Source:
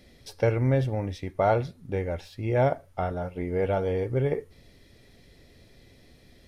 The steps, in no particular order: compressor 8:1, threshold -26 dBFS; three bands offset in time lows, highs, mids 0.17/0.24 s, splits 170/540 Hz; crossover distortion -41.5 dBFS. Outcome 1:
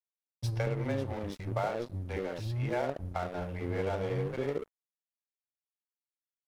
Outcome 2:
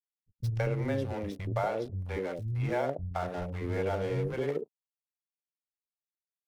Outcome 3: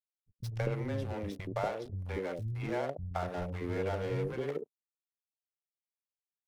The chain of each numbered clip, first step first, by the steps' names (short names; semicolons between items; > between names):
three bands offset in time > compressor > crossover distortion; crossover distortion > three bands offset in time > compressor; compressor > crossover distortion > three bands offset in time